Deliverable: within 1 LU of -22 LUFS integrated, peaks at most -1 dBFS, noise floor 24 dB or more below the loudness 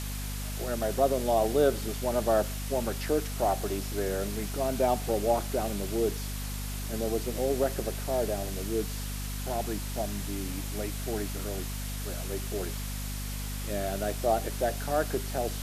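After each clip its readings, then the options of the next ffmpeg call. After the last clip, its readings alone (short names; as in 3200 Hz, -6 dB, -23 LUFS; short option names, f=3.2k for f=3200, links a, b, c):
hum 50 Hz; harmonics up to 250 Hz; hum level -33 dBFS; noise floor -35 dBFS; noise floor target -55 dBFS; loudness -31.0 LUFS; peak -11.5 dBFS; loudness target -22.0 LUFS
-> -af "bandreject=f=50:t=h:w=6,bandreject=f=100:t=h:w=6,bandreject=f=150:t=h:w=6,bandreject=f=200:t=h:w=6,bandreject=f=250:t=h:w=6"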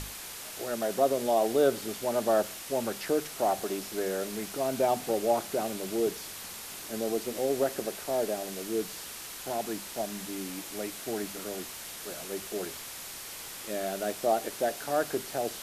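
hum none; noise floor -42 dBFS; noise floor target -56 dBFS
-> -af "afftdn=nr=14:nf=-42"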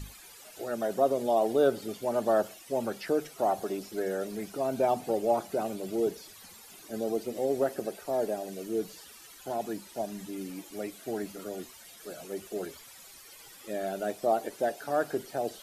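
noise floor -51 dBFS; noise floor target -56 dBFS
-> -af "afftdn=nr=6:nf=-51"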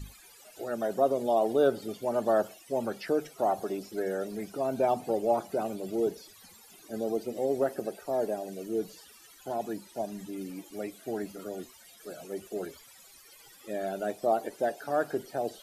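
noise floor -55 dBFS; noise floor target -56 dBFS
-> -af "afftdn=nr=6:nf=-55"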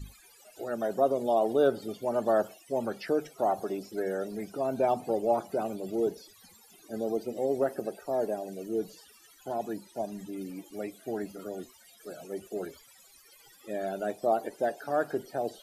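noise floor -58 dBFS; loudness -31.5 LUFS; peak -12.5 dBFS; loudness target -22.0 LUFS
-> -af "volume=9.5dB"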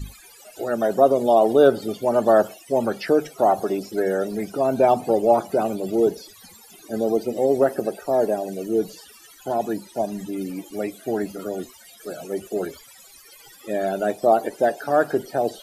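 loudness -22.0 LUFS; peak -3.0 dBFS; noise floor -48 dBFS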